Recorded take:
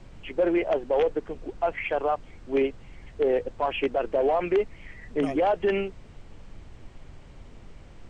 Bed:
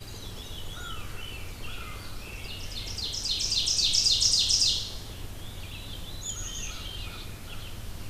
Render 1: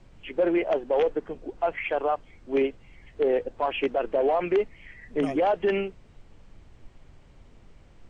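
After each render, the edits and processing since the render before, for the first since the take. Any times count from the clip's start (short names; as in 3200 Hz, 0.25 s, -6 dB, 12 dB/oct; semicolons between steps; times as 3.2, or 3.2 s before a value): noise print and reduce 6 dB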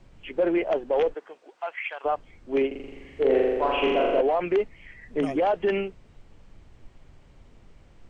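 1.13–2.04 HPF 610 Hz -> 1400 Hz; 2.67–4.21 flutter echo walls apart 7.2 m, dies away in 1.4 s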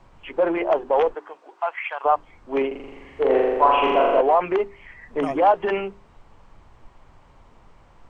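bell 1000 Hz +12.5 dB 1.1 oct; notches 50/100/150/200/250/300/350/400 Hz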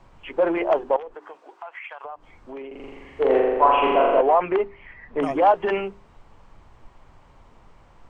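0.96–2.82 compressor, threshold -34 dBFS; 3.39–5.22 LPF 3400 Hz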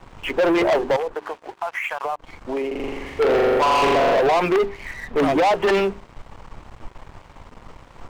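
limiter -13.5 dBFS, peak gain reduction 9.5 dB; sample leveller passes 3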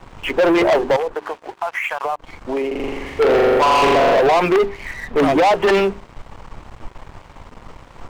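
gain +3.5 dB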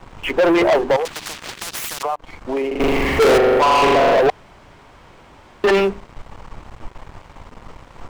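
1.05–2.03 spectral compressor 10:1; 2.8–3.38 power-law curve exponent 0.35; 4.3–5.64 room tone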